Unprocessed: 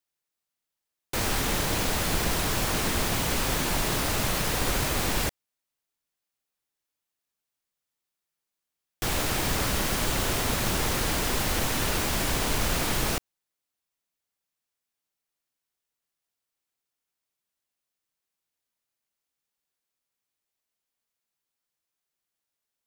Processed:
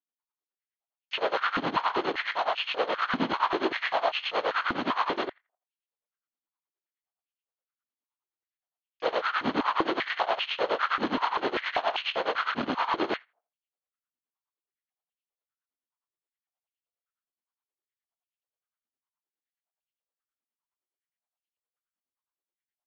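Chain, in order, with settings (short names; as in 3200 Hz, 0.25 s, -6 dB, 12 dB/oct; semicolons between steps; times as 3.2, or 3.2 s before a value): high shelf 3200 Hz -10 dB; in parallel at +0.5 dB: limiter -25 dBFS, peak gain reduction 9.5 dB; on the sum: sample leveller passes 3; rippled Chebyshev low-pass 4400 Hz, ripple 6 dB; harmoniser -7 st -5 dB, +7 st -17 dB; tremolo 9.6 Hz, depth 89%; on a send: tape echo 83 ms, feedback 22%, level -22.5 dB, low-pass 1700 Hz; on the sum: stepped high-pass 5.1 Hz 250–2700 Hz; gain -5.5 dB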